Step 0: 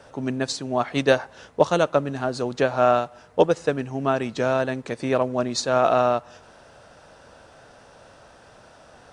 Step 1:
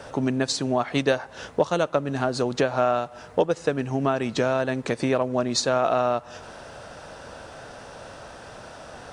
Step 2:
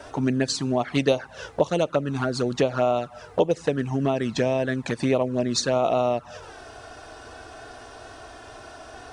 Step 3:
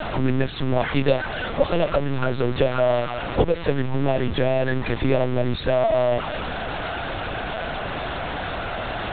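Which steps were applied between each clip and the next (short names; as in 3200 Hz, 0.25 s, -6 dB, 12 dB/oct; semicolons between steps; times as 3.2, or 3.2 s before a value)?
compressor 3:1, threshold -30 dBFS, peak gain reduction 14 dB; gain +8 dB
envelope flanger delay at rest 3.5 ms, full sweep at -17.5 dBFS; gain +2.5 dB
zero-crossing step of -23 dBFS; LPC vocoder at 8 kHz pitch kept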